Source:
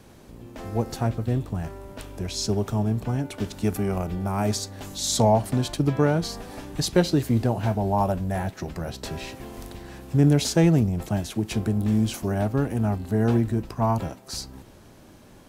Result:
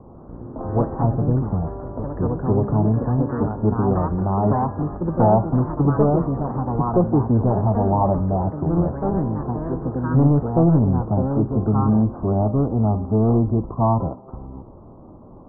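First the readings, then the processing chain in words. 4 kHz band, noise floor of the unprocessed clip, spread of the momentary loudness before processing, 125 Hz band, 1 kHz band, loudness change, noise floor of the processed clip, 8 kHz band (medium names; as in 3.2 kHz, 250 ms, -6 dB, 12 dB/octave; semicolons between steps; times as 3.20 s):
under -40 dB, -49 dBFS, 15 LU, +5.5 dB, +6.0 dB, +4.5 dB, -43 dBFS, under -40 dB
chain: saturation -18 dBFS, distortion -12 dB; steep low-pass 1.2 kHz 72 dB/octave; ever faster or slower copies 138 ms, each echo +3 st, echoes 2, each echo -6 dB; de-hum 202.6 Hz, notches 33; trim +7 dB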